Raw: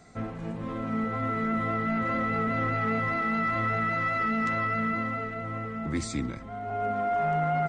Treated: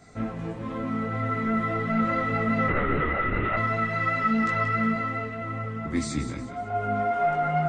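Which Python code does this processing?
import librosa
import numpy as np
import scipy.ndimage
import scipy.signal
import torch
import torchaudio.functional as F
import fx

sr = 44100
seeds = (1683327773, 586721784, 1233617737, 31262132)

y = fx.echo_feedback(x, sr, ms=181, feedback_pct=35, wet_db=-11)
y = fx.lpc_vocoder(y, sr, seeds[0], excitation='whisper', order=10, at=(2.68, 3.57))
y = fx.detune_double(y, sr, cents=15)
y = y * 10.0 ** (5.5 / 20.0)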